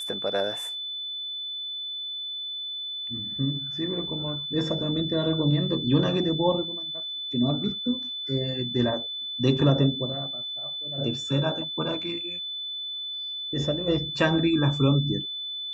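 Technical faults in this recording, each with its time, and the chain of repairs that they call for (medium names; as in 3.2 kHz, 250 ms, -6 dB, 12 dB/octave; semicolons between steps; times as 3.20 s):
whine 3.5 kHz -31 dBFS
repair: band-stop 3.5 kHz, Q 30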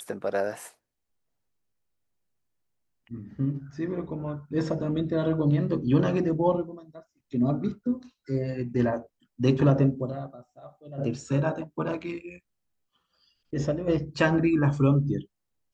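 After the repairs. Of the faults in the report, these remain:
nothing left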